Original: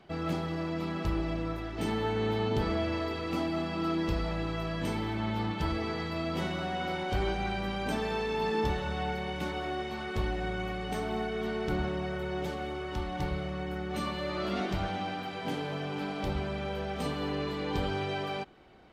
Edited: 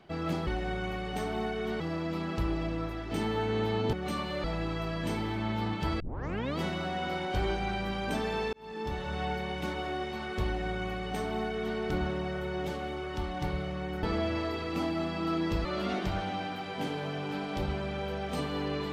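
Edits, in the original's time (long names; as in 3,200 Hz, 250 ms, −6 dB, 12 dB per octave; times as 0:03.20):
0:02.60–0:04.22: swap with 0:13.81–0:14.32
0:05.78: tape start 0.58 s
0:08.31–0:08.99: fade in linear
0:10.23–0:11.56: duplicate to 0:00.47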